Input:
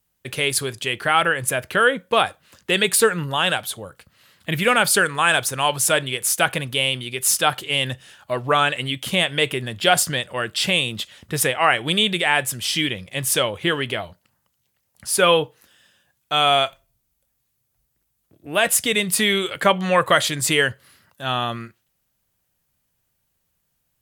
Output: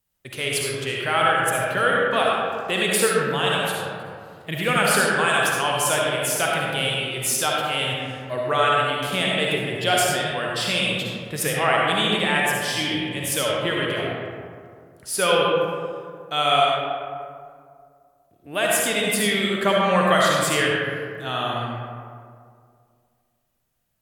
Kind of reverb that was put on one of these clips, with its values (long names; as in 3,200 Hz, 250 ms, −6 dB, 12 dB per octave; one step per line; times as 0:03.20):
comb and all-pass reverb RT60 2.2 s, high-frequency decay 0.4×, pre-delay 25 ms, DRR −3.5 dB
level −6 dB